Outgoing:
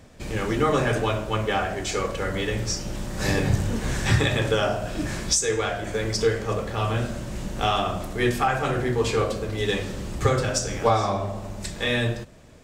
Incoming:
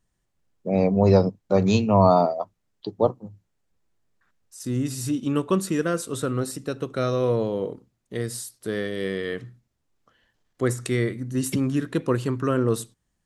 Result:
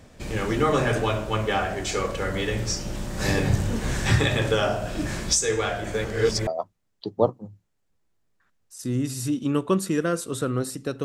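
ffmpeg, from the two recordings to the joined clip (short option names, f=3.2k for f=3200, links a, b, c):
-filter_complex "[0:a]apad=whole_dur=11.04,atrim=end=11.04,asplit=2[a][b];[a]atrim=end=6.052[c];[b]atrim=start=6.048:end=6.472,asetpts=PTS-STARTPTS,areverse[d];[1:a]atrim=start=2.278:end=6.85[e];[c][d]acrossfade=d=0.004:c1=hsin:c2=hsin[f];[f][e]acrossfade=d=0.004:c1=hsin:c2=hsin"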